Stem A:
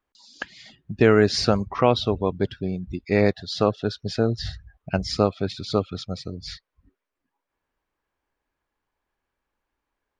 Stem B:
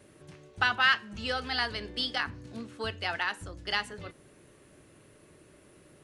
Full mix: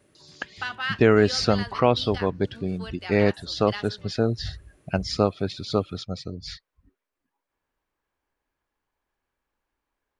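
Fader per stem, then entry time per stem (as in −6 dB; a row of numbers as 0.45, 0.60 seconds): −1.0, −5.5 decibels; 0.00, 0.00 seconds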